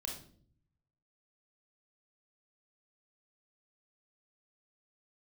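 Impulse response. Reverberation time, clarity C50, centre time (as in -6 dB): 0.55 s, 5.0 dB, 30 ms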